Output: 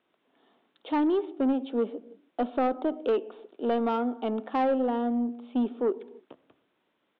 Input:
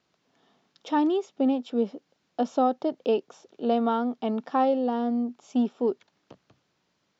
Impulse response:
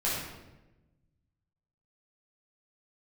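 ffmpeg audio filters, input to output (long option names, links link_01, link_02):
-filter_complex "[0:a]lowshelf=frequency=200:width_type=q:width=1.5:gain=-9.5,acontrast=70,aresample=8000,aresample=44100,asplit=2[link_01][link_02];[1:a]atrim=start_sample=2205,afade=type=out:start_time=0.38:duration=0.01,atrim=end_sample=17199,lowpass=2500[link_03];[link_02][link_03]afir=irnorm=-1:irlink=0,volume=-23dB[link_04];[link_01][link_04]amix=inputs=2:normalize=0,asoftclip=type=tanh:threshold=-11dB,volume=-7.5dB"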